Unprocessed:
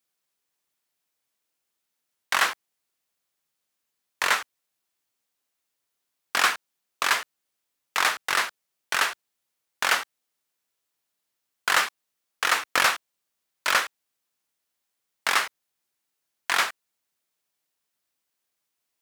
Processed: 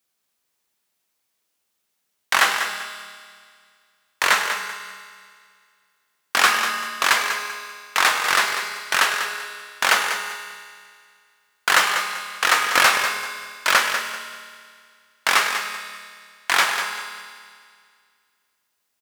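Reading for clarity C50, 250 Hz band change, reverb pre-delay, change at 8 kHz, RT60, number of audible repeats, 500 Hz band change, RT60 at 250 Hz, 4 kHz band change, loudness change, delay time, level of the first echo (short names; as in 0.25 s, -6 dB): 4.0 dB, +6.5 dB, 5 ms, +6.0 dB, 2.0 s, 3, +6.0 dB, 2.1 s, +6.0 dB, +4.5 dB, 0.194 s, -8.5 dB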